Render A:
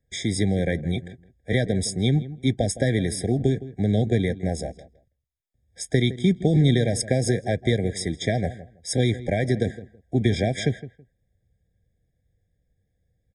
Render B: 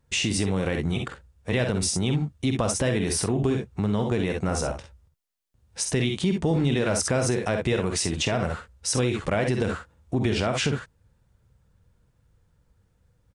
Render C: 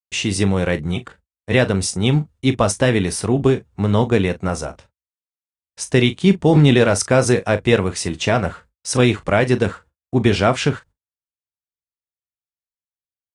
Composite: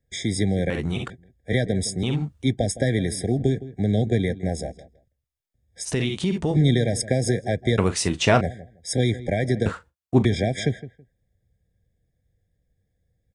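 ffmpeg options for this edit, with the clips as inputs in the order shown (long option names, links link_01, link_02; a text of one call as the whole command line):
ffmpeg -i take0.wav -i take1.wav -i take2.wav -filter_complex "[1:a]asplit=3[link_01][link_02][link_03];[2:a]asplit=2[link_04][link_05];[0:a]asplit=6[link_06][link_07][link_08][link_09][link_10][link_11];[link_06]atrim=end=0.702[link_12];[link_01]atrim=start=0.698:end=1.102[link_13];[link_07]atrim=start=1.098:end=2.032[link_14];[link_02]atrim=start=2.028:end=2.432[link_15];[link_08]atrim=start=2.428:end=5.89[link_16];[link_03]atrim=start=5.83:end=6.57[link_17];[link_09]atrim=start=6.51:end=7.782[link_18];[link_04]atrim=start=7.778:end=8.412[link_19];[link_10]atrim=start=8.408:end=9.662[link_20];[link_05]atrim=start=9.658:end=10.252[link_21];[link_11]atrim=start=10.248[link_22];[link_12][link_13]acrossfade=duration=0.004:curve1=hsin:curve2=hsin[link_23];[link_23][link_14]acrossfade=duration=0.004:curve1=hsin:curve2=hsin[link_24];[link_24][link_15]acrossfade=duration=0.004:curve1=hsin:curve2=hsin[link_25];[link_25][link_16]acrossfade=duration=0.004:curve1=hsin:curve2=hsin[link_26];[link_26][link_17]acrossfade=duration=0.06:curve1=tri:curve2=tri[link_27];[link_27][link_18]acrossfade=duration=0.06:curve1=tri:curve2=tri[link_28];[link_28][link_19]acrossfade=duration=0.004:curve1=hsin:curve2=hsin[link_29];[link_29][link_20]acrossfade=duration=0.004:curve1=hsin:curve2=hsin[link_30];[link_30][link_21]acrossfade=duration=0.004:curve1=hsin:curve2=hsin[link_31];[link_31][link_22]acrossfade=duration=0.004:curve1=hsin:curve2=hsin" out.wav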